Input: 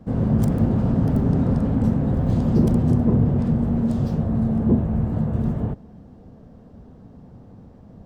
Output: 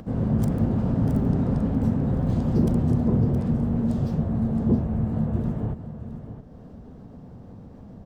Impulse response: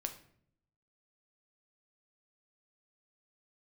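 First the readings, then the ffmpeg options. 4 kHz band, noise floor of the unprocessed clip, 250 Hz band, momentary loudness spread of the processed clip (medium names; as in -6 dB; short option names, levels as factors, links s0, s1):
no reading, -46 dBFS, -3.0 dB, 12 LU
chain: -filter_complex "[0:a]asplit=2[s0][s1];[s1]aecho=0:1:669:0.299[s2];[s0][s2]amix=inputs=2:normalize=0,acompressor=mode=upward:threshold=0.0251:ratio=2.5,volume=0.668"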